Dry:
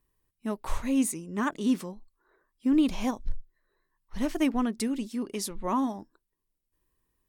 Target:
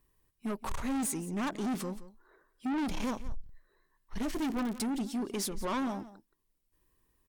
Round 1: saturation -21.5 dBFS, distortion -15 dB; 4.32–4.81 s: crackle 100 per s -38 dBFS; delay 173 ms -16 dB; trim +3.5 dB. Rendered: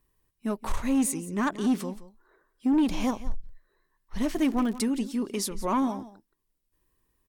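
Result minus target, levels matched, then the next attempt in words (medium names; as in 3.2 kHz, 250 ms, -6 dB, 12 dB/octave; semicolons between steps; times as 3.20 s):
saturation: distortion -10 dB
saturation -33.5 dBFS, distortion -5 dB; 4.32–4.81 s: crackle 100 per s -38 dBFS; delay 173 ms -16 dB; trim +3.5 dB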